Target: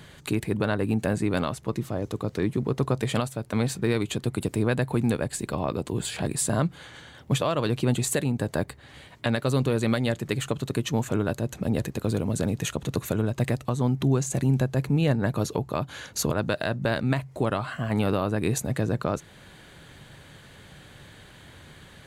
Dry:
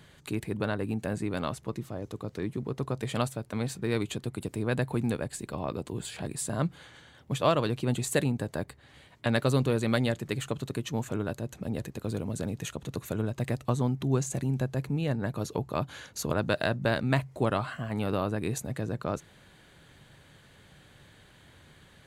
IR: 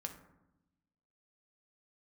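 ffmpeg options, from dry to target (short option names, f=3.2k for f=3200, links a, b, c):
-af "alimiter=limit=-21dB:level=0:latency=1:release=385,volume=7.5dB"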